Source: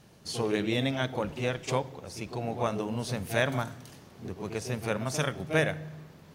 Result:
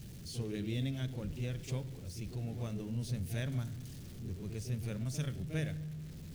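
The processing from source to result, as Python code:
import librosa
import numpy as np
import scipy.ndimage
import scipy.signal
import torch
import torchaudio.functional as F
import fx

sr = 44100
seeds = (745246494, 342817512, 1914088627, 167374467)

y = x + 0.5 * 10.0 ** (-37.0 / 20.0) * np.sign(x)
y = fx.tone_stack(y, sr, knobs='10-0-1')
y = y * librosa.db_to_amplitude(9.0)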